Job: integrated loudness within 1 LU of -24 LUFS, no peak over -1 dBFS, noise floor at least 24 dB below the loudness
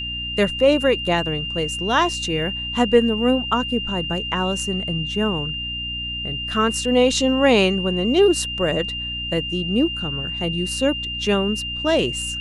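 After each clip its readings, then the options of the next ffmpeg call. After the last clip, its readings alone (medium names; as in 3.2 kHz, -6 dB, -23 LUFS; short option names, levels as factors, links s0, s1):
hum 60 Hz; highest harmonic 300 Hz; hum level -33 dBFS; steady tone 2.8 kHz; tone level -26 dBFS; loudness -20.5 LUFS; peak level -3.0 dBFS; loudness target -24.0 LUFS
-> -af "bandreject=f=60:t=h:w=6,bandreject=f=120:t=h:w=6,bandreject=f=180:t=h:w=6,bandreject=f=240:t=h:w=6,bandreject=f=300:t=h:w=6"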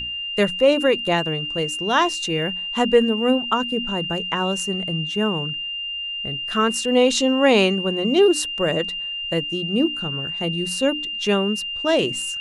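hum not found; steady tone 2.8 kHz; tone level -26 dBFS
-> -af "bandreject=f=2800:w=30"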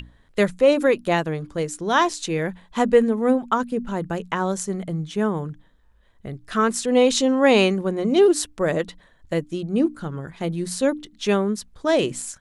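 steady tone not found; loudness -22.0 LUFS; peak level -4.0 dBFS; loudness target -24.0 LUFS
-> -af "volume=0.794"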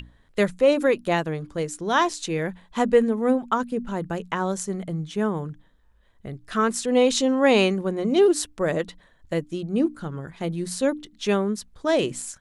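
loudness -24.0 LUFS; peak level -6.0 dBFS; noise floor -58 dBFS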